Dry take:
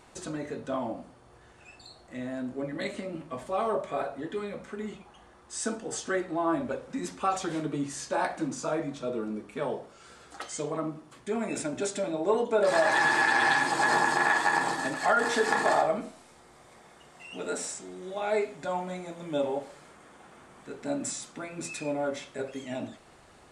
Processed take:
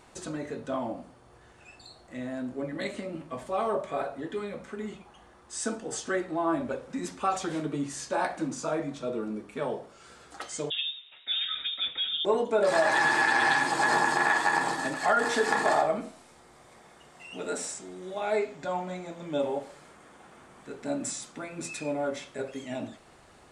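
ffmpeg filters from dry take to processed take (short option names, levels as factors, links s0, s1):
-filter_complex "[0:a]asettb=1/sr,asplit=3[s0][s1][s2];[s0]atrim=end=10.704[s3];[s1]atrim=start=10.7:end=12.25,asetpts=PTS-STARTPTS,afade=t=in:d=0.004:c=qsin,afade=t=out:st=1.546:d=0.004:c=qsin,lowpass=f=3300:t=q:w=0.5098,lowpass=f=3300:t=q:w=0.6013,lowpass=f=3300:t=q:w=0.9,lowpass=f=3300:t=q:w=2.563,afreqshift=-3900[s4];[s2]atrim=start=12.246[s5];[s3][s4]acrossfade=d=0.004:c1=hsin:c2=qsin[s6];[s6][s5]acrossfade=d=0.004:c1=qsin:c2=hsin,asettb=1/sr,asplit=3[s7][s8][s9];[s7]atrim=end=18.364[s10];[s8]atrim=start=18.36:end=19.4,asetpts=PTS-STARTPTS,afade=t=in:d=0.004:c=qsin,afade=t=out:st=1.036:d=0.004:c=qsin,equalizer=f=10000:t=o:w=0.26:g=-15[s11];[s9]atrim=start=19.396[s12];[s10][s11]acrossfade=d=0.004:c1=hsin:c2=qsin[s13];[s13][s12]acrossfade=d=0.004:c1=qsin:c2=hsin"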